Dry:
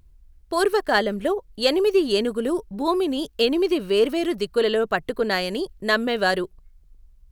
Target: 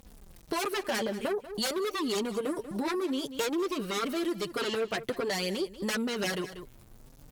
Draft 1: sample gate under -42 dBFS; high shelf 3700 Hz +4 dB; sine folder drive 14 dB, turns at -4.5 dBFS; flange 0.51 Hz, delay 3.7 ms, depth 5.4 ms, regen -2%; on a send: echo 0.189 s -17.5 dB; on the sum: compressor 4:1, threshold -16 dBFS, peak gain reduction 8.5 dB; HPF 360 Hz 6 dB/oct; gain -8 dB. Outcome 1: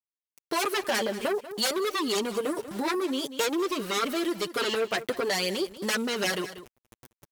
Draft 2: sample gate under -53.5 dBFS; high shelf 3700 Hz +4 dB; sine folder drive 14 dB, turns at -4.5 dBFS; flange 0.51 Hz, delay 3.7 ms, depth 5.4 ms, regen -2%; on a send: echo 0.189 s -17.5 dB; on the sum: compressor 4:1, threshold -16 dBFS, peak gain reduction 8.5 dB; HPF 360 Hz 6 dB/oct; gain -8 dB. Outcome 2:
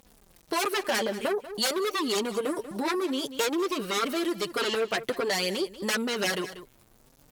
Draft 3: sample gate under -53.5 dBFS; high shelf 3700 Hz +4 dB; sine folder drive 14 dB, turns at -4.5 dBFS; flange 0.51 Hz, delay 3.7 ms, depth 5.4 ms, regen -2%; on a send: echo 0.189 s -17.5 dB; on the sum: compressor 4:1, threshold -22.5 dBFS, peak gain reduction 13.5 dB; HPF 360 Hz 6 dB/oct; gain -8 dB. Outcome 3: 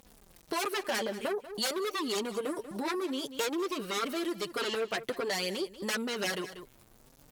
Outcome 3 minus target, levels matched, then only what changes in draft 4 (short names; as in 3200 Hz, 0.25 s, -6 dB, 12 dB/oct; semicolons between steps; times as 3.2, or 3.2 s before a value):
125 Hz band -4.0 dB
change: HPF 99 Hz 6 dB/oct